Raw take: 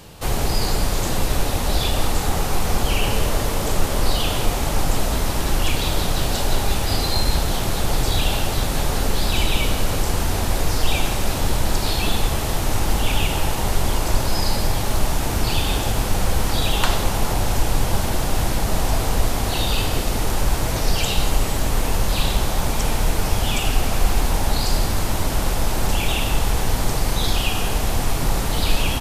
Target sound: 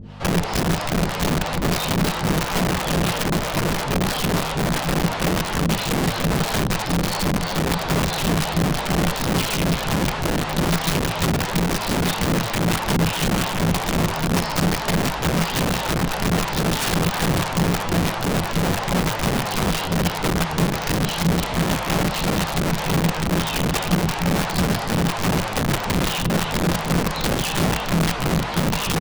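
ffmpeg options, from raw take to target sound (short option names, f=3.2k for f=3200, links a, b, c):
-filter_complex "[0:a]acrossover=split=410[a][b];[a]aeval=exprs='val(0)*(1-1/2+1/2*cos(2*PI*3*n/s))':c=same[c];[b]aeval=exprs='val(0)*(1-1/2-1/2*cos(2*PI*3*n/s))':c=same[d];[c][d]amix=inputs=2:normalize=0,asetrate=46722,aresample=44100,atempo=0.943874,lowpass=3.1k,aeval=exprs='clip(val(0),-1,0.158)':c=same,aeval=exprs='val(0)+0.01*(sin(2*PI*50*n/s)+sin(2*PI*2*50*n/s)/2+sin(2*PI*3*50*n/s)/3+sin(2*PI*4*50*n/s)/4+sin(2*PI*5*50*n/s)/5)':c=same,asplit=5[e][f][g][h][i];[f]adelay=318,afreqshift=110,volume=-9dB[j];[g]adelay=636,afreqshift=220,volume=-17dB[k];[h]adelay=954,afreqshift=330,volume=-24.9dB[l];[i]adelay=1272,afreqshift=440,volume=-32.9dB[m];[e][j][k][l][m]amix=inputs=5:normalize=0,flanger=delay=8.7:depth=6.8:regen=-12:speed=0.16:shape=sinusoidal,aeval=exprs='(mod(15*val(0)+1,2)-1)/15':c=same,equalizer=f=170:t=o:w=0.34:g=12,volume=6.5dB"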